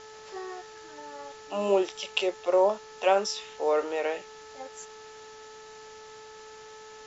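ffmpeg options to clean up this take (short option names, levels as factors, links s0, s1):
-af "bandreject=f=434.7:t=h:w=4,bandreject=f=869.4:t=h:w=4,bandreject=f=1304.1:t=h:w=4,bandreject=f=1738.8:t=h:w=4,afftdn=nr=25:nf=-47"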